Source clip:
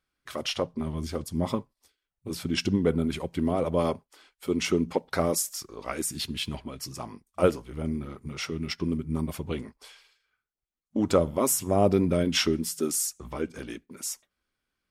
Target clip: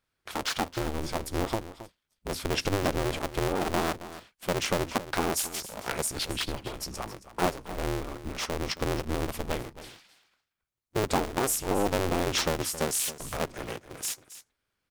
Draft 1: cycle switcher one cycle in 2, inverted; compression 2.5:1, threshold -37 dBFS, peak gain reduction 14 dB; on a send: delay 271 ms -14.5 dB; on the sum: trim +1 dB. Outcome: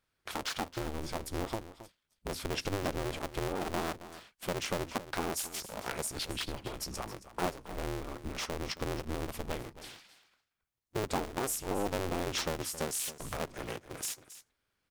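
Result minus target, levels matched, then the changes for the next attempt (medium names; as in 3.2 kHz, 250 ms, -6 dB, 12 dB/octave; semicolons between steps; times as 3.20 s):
compression: peak gain reduction +6.5 dB
change: compression 2.5:1, threshold -26 dBFS, peak gain reduction 7.5 dB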